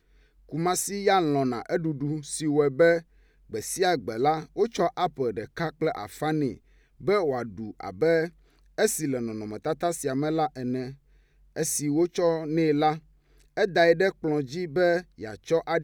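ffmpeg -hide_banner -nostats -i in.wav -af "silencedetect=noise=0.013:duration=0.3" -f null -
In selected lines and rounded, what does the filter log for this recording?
silence_start: 0.00
silence_end: 0.52 | silence_duration: 0.52
silence_start: 3.00
silence_end: 3.53 | silence_duration: 0.53
silence_start: 6.54
silence_end: 7.01 | silence_duration: 0.46
silence_start: 8.28
silence_end: 8.78 | silence_duration: 0.50
silence_start: 10.92
silence_end: 11.56 | silence_duration: 0.64
silence_start: 12.98
silence_end: 13.57 | silence_duration: 0.59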